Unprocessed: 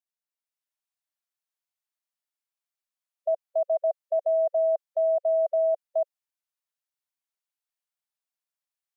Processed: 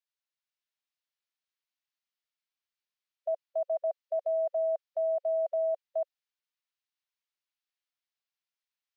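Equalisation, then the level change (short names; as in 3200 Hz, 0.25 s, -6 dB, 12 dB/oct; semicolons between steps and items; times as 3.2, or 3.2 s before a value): air absorption 240 m; tilt +5.5 dB/oct; bell 540 Hz +2.5 dB 0.29 oct; -2.0 dB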